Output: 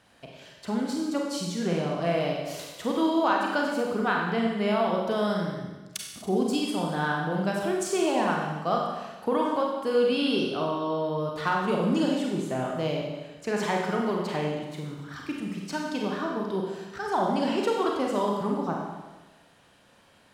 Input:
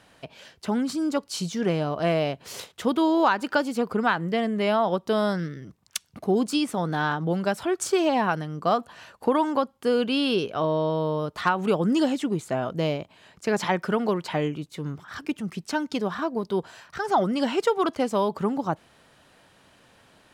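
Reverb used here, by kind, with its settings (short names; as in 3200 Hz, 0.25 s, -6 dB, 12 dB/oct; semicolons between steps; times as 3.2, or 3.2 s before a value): Schroeder reverb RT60 1.2 s, combs from 31 ms, DRR -1 dB; gain -5.5 dB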